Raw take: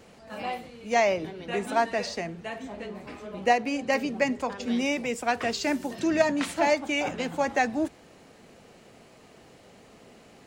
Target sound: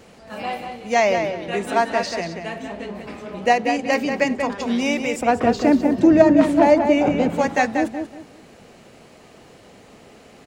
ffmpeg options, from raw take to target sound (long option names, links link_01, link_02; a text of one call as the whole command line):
ffmpeg -i in.wav -filter_complex "[0:a]asettb=1/sr,asplit=3[link_01][link_02][link_03];[link_01]atrim=end=5.214[link_04];[link_02]atrim=start=5.21:end=7.3,asetpts=PTS-STARTPTS,afade=type=in:duration=0.004:curve=qsin,afade=type=out:start_time=2.086:duration=0.004:curve=qsin,tiltshelf=frequency=1100:gain=9[link_05];[link_03]atrim=start=7.296[link_06];[link_04][link_05]acrossfade=duration=0.004:curve1=hsin:curve2=qsin[link_07];[link_07][link_06]acrossfade=duration=0.004:curve1=qsin:curve2=hsin,asplit=2[link_08][link_09];[link_09]adelay=186,lowpass=frequency=4200:poles=1,volume=-6dB,asplit=2[link_10][link_11];[link_11]adelay=186,lowpass=frequency=4200:poles=1,volume=0.26,asplit=2[link_12][link_13];[link_13]adelay=186,lowpass=frequency=4200:poles=1,volume=0.26[link_14];[link_08][link_10][link_12][link_14]amix=inputs=4:normalize=0,volume=5dB" out.wav